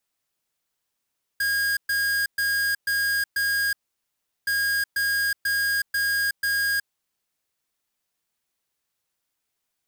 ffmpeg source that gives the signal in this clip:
-f lavfi -i "aevalsrc='0.0668*(2*lt(mod(1630*t,1),0.5)-1)*clip(min(mod(mod(t,3.07),0.49),0.37-mod(mod(t,3.07),0.49))/0.005,0,1)*lt(mod(t,3.07),2.45)':d=6.14:s=44100"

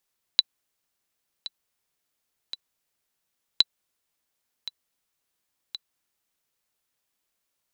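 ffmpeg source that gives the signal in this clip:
-f lavfi -i "aevalsrc='pow(10,(-3-17*gte(mod(t,3*60/56),60/56))/20)*sin(2*PI*3970*mod(t,60/56))*exp(-6.91*mod(t,60/56)/0.03)':d=6.42:s=44100"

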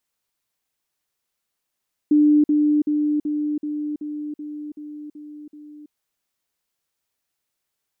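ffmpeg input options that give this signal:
-f lavfi -i "aevalsrc='pow(10,(-11.5-3*floor(t/0.38))/20)*sin(2*PI*298*t)*clip(min(mod(t,0.38),0.33-mod(t,0.38))/0.005,0,1)':d=3.8:s=44100"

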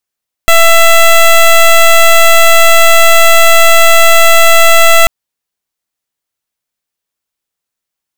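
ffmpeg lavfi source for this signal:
-f lavfi -i "aevalsrc='0.668*(2*lt(mod(667*t,1),0.13)-1)':d=4.59:s=44100"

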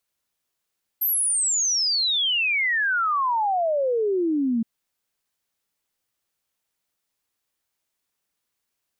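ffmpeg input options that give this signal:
-f lavfi -i "aevalsrc='0.106*clip(min(t,3.62-t)/0.01,0,1)*sin(2*PI*13000*3.62/log(220/13000)*(exp(log(220/13000)*t/3.62)-1))':d=3.62:s=44100"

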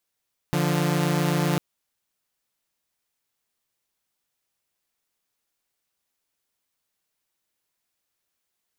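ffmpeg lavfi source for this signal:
-f lavfi -i "aevalsrc='0.0891*((2*mod(146.83*t,1)-1)+(2*mod(174.61*t,1)-1))':d=1.05:s=44100"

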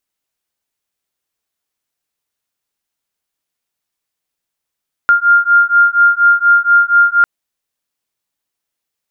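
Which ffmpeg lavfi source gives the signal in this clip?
-f lavfi -i "aevalsrc='0.316*(sin(2*PI*1400*t)+sin(2*PI*1404.2*t))':d=2.15:s=44100"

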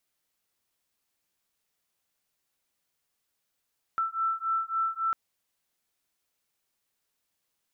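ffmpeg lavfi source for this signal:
-f lavfi -i "aevalsrc='0.0335*(sin(2*PI*1330*t)+sin(2*PI*1333.6*t))':d=1.15:s=44100"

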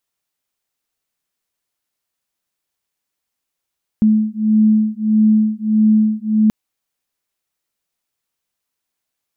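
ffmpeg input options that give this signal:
-f lavfi -i "aevalsrc='0.2*(sin(2*PI*215*t)+sin(2*PI*216.6*t))':d=2.48:s=44100"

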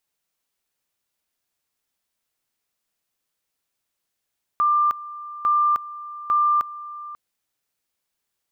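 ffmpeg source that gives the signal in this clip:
-f lavfi -i "aevalsrc='pow(10,(-15.5-17*gte(mod(t,0.85),0.31))/20)*sin(2*PI*1190*t)':d=2.55:s=44100"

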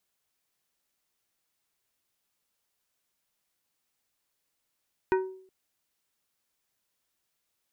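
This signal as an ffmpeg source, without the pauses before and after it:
-f lavfi -i "aevalsrc='0.106*pow(10,-3*t/0.56)*sin(2*PI*377*t)+0.0596*pow(10,-3*t/0.295)*sin(2*PI*942.5*t)+0.0335*pow(10,-3*t/0.212)*sin(2*PI*1508*t)+0.0188*pow(10,-3*t/0.182)*sin(2*PI*1885*t)+0.0106*pow(10,-3*t/0.151)*sin(2*PI*2450.5*t)':d=0.37:s=44100"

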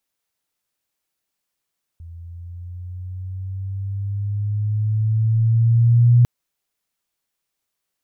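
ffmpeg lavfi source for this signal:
-f lavfi -i "aevalsrc='pow(10,(-8.5+26*(t/4.25-1))/20)*sin(2*PI*83.3*4.25/(6.5*log(2)/12)*(exp(6.5*log(2)/12*t/4.25)-1))':d=4.25:s=44100"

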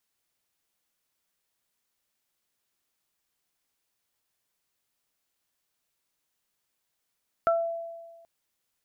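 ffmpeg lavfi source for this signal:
-f lavfi -i "aevalsrc='0.106*pow(10,-3*t/1.44)*sin(2*PI*670*t)+0.1*pow(10,-3*t/0.24)*sin(2*PI*1340*t)':d=0.78:s=44100"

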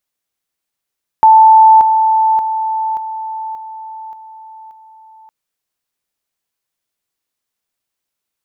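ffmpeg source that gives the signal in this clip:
-f lavfi -i "aevalsrc='pow(10,(-2.5-6*floor(t/0.58))/20)*sin(2*PI*881*t)':d=4.06:s=44100"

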